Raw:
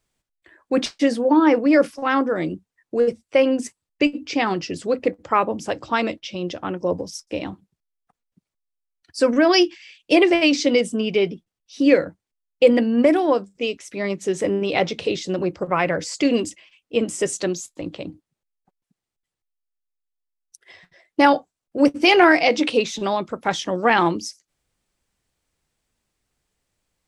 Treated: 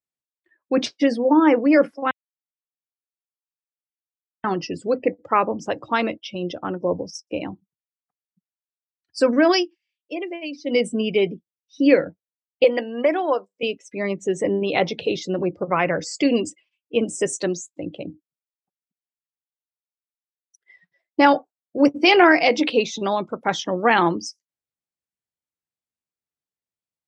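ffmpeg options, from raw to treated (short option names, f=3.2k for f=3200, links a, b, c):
-filter_complex "[0:a]asettb=1/sr,asplit=3[a][b][c];[a]atrim=end=12.644[d];[b]atrim=start=12.64:end=13.63,asetpts=PTS-STARTPTS,afade=t=in:d=0.004:c=qsin,afade=t=out:st=0.986:d=0.004:c=qsin,highpass=480[e];[c]atrim=start=13.626[f];[d][e]acrossfade=d=0.004:c1=hsin:c2=qsin[g];[g][f]acrossfade=d=0.004:c1=qsin:c2=hsin,asplit=5[h][i][j][k][l];[h]atrim=end=2.11,asetpts=PTS-STARTPTS,afade=t=out:st=2.106:d=0.004:c=hsin[m];[i]atrim=start=2.11:end=4.44,asetpts=PTS-STARTPTS,volume=0[n];[j]atrim=start=4.44:end=9.67,asetpts=PTS-STARTPTS,afade=t=in:d=0.004:c=hsin,afade=t=out:st=5.06:d=0.17:silence=0.188365[o];[k]atrim=start=9.67:end=10.63,asetpts=PTS-STARTPTS,volume=-14.5dB[p];[l]atrim=start=10.63,asetpts=PTS-STARTPTS,afade=t=in:d=0.17:silence=0.188365[q];[m][n][o][p][q]concat=n=5:v=0:a=1,highpass=93,afftdn=nr=22:nf=-37"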